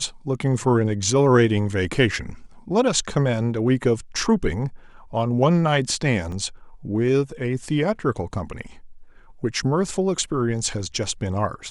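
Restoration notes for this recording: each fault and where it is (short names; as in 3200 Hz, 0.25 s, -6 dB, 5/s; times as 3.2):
6.32 gap 3.2 ms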